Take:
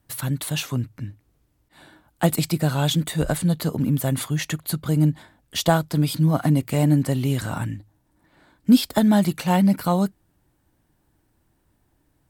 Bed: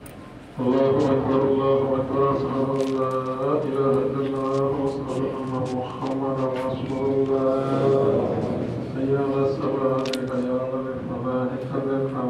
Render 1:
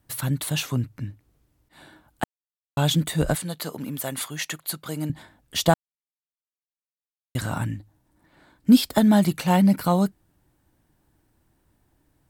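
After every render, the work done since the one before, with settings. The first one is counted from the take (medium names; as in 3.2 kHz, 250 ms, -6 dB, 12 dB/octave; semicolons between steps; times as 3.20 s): 2.24–2.77 s: mute; 3.35–5.10 s: high-pass 720 Hz 6 dB/octave; 5.74–7.35 s: mute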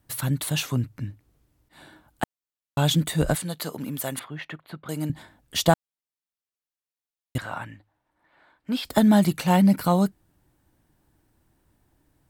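4.19–4.89 s: distance through air 480 m; 7.38–8.85 s: three-band isolator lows -15 dB, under 510 Hz, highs -15 dB, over 3.5 kHz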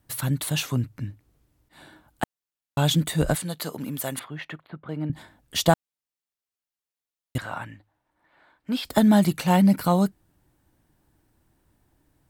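4.67–5.13 s: distance through air 420 m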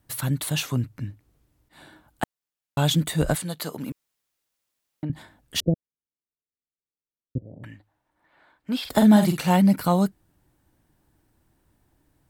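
3.92–5.03 s: room tone; 5.60–7.64 s: steep low-pass 510 Hz 48 dB/octave; 8.80–9.50 s: doubling 47 ms -6.5 dB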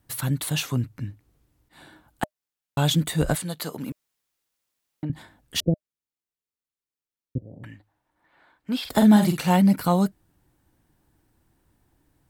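band-stop 610 Hz, Q 19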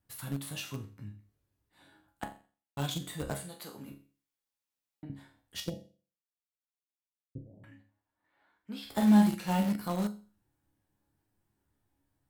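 chord resonator C#2 sus4, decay 0.39 s; in parallel at -12 dB: bit crusher 5-bit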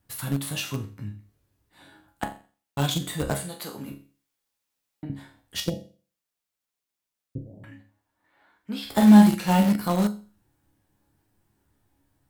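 trim +9 dB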